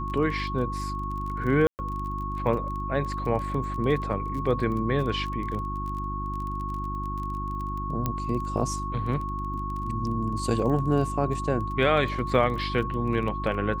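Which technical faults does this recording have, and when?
crackle 20/s -33 dBFS
hum 50 Hz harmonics 7 -33 dBFS
tone 1100 Hz -32 dBFS
1.67–1.79 gap 0.119 s
8.06 pop -13 dBFS

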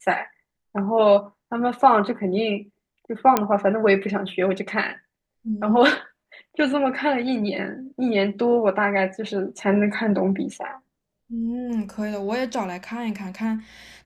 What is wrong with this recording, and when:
3.37 pop -4 dBFS

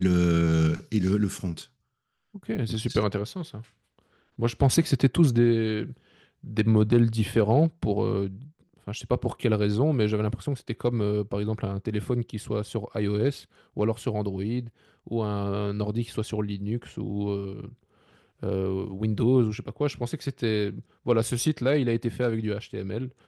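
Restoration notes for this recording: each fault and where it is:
2.55 gap 2.2 ms

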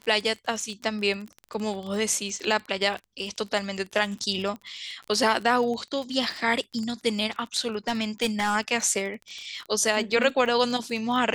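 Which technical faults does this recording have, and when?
crackle 27/s -31 dBFS
7.88–8.56 clipped -19.5 dBFS

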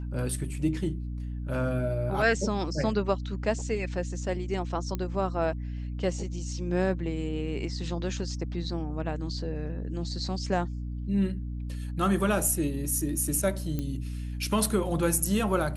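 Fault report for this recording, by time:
hum 60 Hz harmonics 5 -34 dBFS
4.95 pop -18 dBFS
13.79 pop -18 dBFS

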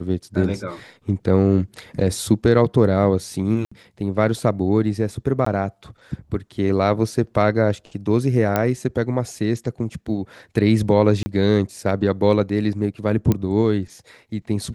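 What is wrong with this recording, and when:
3.65–3.71 gap 65 ms
5.45–5.46 gap 14 ms
8.56 pop -6 dBFS
11.23–11.26 gap 30 ms
13.32 pop -7 dBFS

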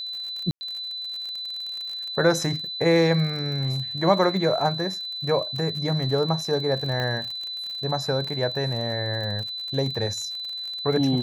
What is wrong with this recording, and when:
crackle 50/s -31 dBFS
tone 4000 Hz -30 dBFS
0.51–0.61 gap 0.1 s
7 pop -16 dBFS

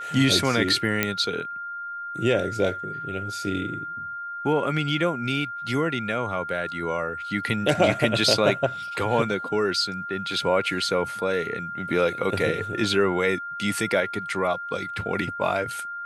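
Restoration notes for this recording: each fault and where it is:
tone 1400 Hz -31 dBFS
1.03 pop -6 dBFS

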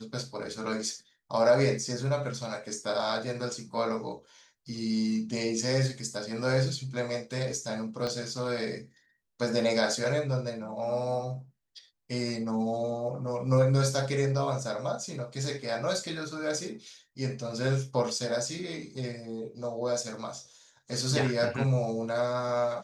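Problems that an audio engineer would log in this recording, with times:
8.07 pop -20 dBFS

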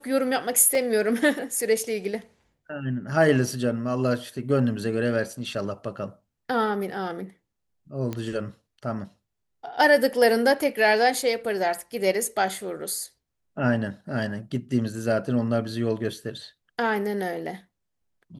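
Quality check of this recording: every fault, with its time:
0.75 gap 2.1 ms
8.13 pop -17 dBFS

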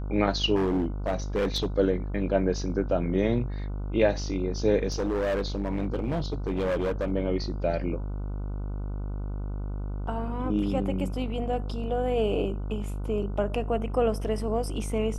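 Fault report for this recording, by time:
buzz 50 Hz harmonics 30 -32 dBFS
0.55–1.66 clipped -21.5 dBFS
4.92–7.12 clipped -23.5 dBFS

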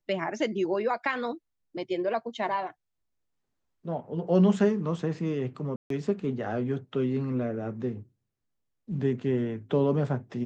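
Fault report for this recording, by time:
5.76–5.9 gap 0.143 s

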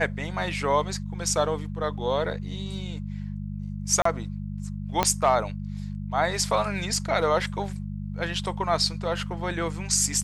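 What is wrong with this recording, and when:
hum 50 Hz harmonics 4 -33 dBFS
4.02–4.05 gap 34 ms
5.03 pop -6 dBFS

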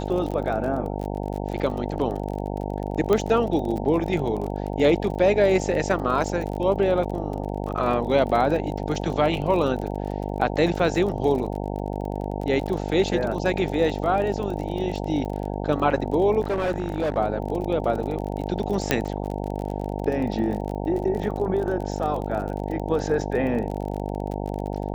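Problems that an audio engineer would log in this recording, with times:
buzz 50 Hz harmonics 18 -29 dBFS
crackle 33/s -30 dBFS
3.13 pop -10 dBFS
16.41–17.18 clipped -20 dBFS
18.91 pop -4 dBFS

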